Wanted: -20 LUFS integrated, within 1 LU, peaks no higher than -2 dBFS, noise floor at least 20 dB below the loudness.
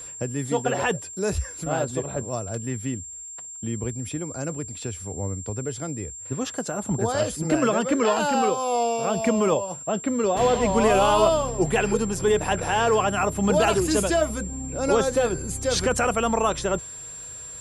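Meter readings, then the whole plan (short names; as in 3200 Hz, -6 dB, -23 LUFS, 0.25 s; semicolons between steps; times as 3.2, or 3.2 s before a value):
ticks 21/s; steady tone 7400 Hz; tone level -36 dBFS; loudness -24.0 LUFS; peak -8.0 dBFS; loudness target -20.0 LUFS
-> de-click; notch 7400 Hz, Q 30; gain +4 dB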